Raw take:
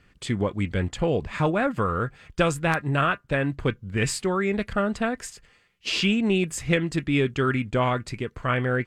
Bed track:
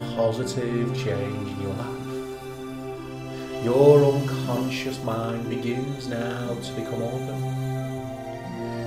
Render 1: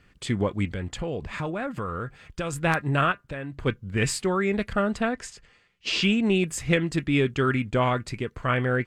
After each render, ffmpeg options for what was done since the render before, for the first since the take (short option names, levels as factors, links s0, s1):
-filter_complex "[0:a]asettb=1/sr,asplit=3[s0][s1][s2];[s0]atrim=end=0.654[s3];[s1]atrim=start=0.65:end=2.53,asetpts=PTS-STARTPTS,afade=t=in:d=0.004:c=qsin,afade=t=out:st=1.876:d=0.004:c=qsin,acompressor=threshold=0.0316:ratio=2.5:attack=3.2:release=140:knee=1:detection=peak[s4];[s2]atrim=start=2.526[s5];[s3][s4]acrossfade=d=0.004:c1=hsin:c2=qsin[s6];[s6][s5]acrossfade=d=0.004:c1=qsin:c2=hsin,asplit=3[s7][s8][s9];[s7]afade=t=out:st=3.11:d=0.02[s10];[s8]acompressor=threshold=0.0251:ratio=4:attack=3.2:release=140:knee=1:detection=peak,afade=t=in:st=3.11:d=0.02,afade=t=out:st=3.65:d=0.02[s11];[s9]afade=t=in:st=3.65:d=0.02[s12];[s10][s11][s12]amix=inputs=3:normalize=0,asettb=1/sr,asplit=3[s13][s14][s15];[s13]atrim=end=5.014[s16];[s14]atrim=start=5.01:end=6.03,asetpts=PTS-STARTPTS,afade=t=in:d=0.004:c=qsin,afade=t=out:st=1.016:d=0.004:c=qsin,lowpass=7700[s17];[s15]atrim=start=6.026[s18];[s16][s17]acrossfade=d=0.004:c1=hsin:c2=qsin[s19];[s19][s18]acrossfade=d=0.004:c1=qsin:c2=hsin"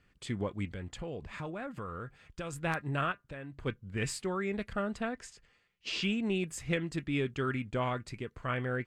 -af "volume=0.335"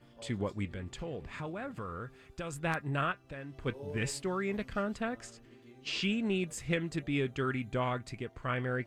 -filter_complex "[1:a]volume=0.0355[s0];[0:a][s0]amix=inputs=2:normalize=0"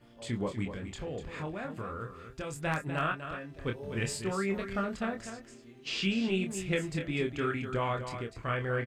-filter_complex "[0:a]asplit=2[s0][s1];[s1]adelay=26,volume=0.562[s2];[s0][s2]amix=inputs=2:normalize=0,aecho=1:1:247:0.335"